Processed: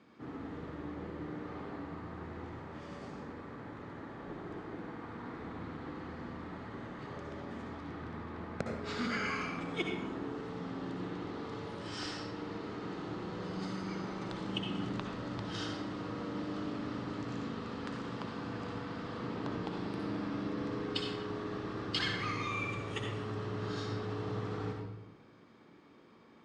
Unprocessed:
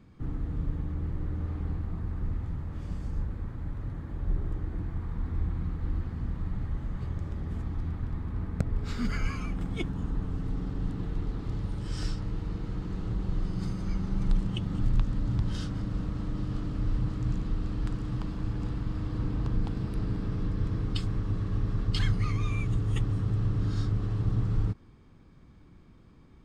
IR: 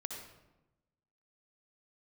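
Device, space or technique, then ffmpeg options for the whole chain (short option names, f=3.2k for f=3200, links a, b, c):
supermarket ceiling speaker: -filter_complex "[0:a]highpass=350,lowpass=5.5k[a];[1:a]atrim=start_sample=2205[b];[a][b]afir=irnorm=-1:irlink=0,volume=5.5dB"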